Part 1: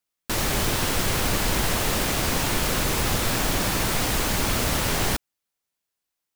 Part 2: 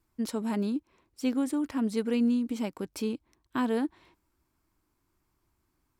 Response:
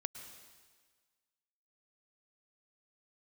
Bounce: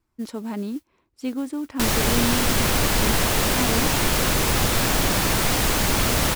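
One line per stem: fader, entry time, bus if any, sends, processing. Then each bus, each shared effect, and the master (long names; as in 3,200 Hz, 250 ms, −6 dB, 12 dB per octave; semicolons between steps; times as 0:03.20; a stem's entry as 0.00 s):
+3.0 dB, 1.50 s, no send, no processing
+0.5 dB, 0.00 s, no send, high-shelf EQ 8,500 Hz −8.5 dB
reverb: not used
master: noise that follows the level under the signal 25 dB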